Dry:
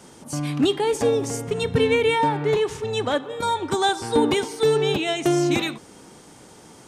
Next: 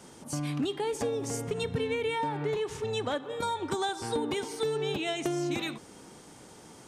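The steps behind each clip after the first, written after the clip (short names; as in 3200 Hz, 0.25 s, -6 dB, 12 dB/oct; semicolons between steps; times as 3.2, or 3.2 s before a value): compressor 5:1, threshold -24 dBFS, peak gain reduction 10 dB; gain -4 dB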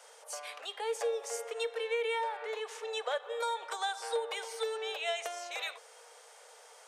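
rippled Chebyshev high-pass 450 Hz, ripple 3 dB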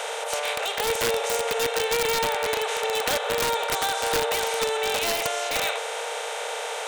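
per-bin compression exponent 0.4; wrapped overs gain 21.5 dB; gain +5 dB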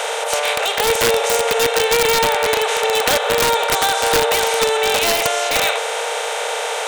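crackle 21/s -36 dBFS; gain +8.5 dB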